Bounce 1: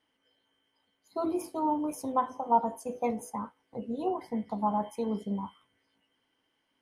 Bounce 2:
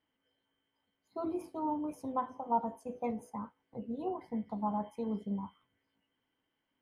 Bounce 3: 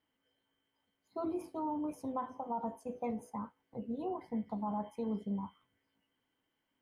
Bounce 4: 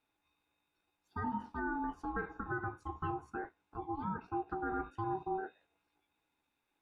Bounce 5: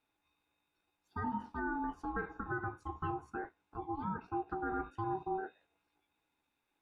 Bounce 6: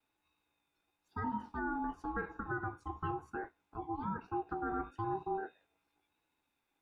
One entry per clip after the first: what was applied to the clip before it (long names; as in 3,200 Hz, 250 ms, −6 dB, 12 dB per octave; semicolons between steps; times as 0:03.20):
bass and treble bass +5 dB, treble −9 dB; level −6.5 dB
brickwall limiter −28.5 dBFS, peak gain reduction 9 dB
treble cut that deepens with the level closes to 2,900 Hz, closed at −35 dBFS; ring modulation 570 Hz; level +2.5 dB
no processing that can be heard
pitch vibrato 1 Hz 40 cents